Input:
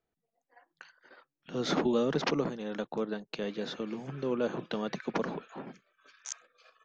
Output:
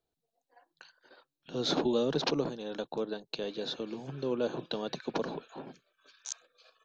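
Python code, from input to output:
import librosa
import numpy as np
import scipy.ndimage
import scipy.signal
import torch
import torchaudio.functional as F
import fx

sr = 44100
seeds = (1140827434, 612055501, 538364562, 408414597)

y = fx.graphic_eq_31(x, sr, hz=(200, 1250, 2000, 4000), db=(-8, -6, -11, 8))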